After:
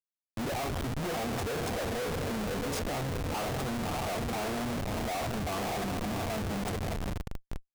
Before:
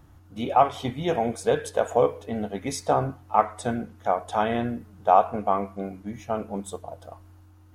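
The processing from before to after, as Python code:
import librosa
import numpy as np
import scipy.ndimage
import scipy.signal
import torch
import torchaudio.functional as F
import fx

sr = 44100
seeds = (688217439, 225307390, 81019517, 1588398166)

y = fx.echo_diffused(x, sr, ms=591, feedback_pct=54, wet_db=-11.0)
y = fx.schmitt(y, sr, flips_db=-33.0)
y = y * 10.0 ** (-7.0 / 20.0)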